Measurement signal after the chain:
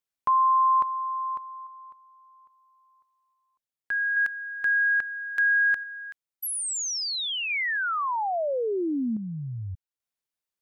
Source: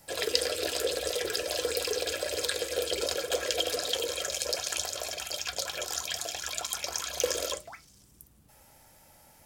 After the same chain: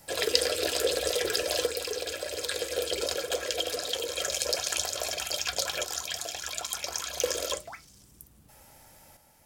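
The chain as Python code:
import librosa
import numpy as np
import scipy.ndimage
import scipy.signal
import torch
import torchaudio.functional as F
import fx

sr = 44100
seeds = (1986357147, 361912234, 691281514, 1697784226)

y = fx.tremolo_random(x, sr, seeds[0], hz=1.2, depth_pct=55)
y = y * 10.0 ** (3.5 / 20.0)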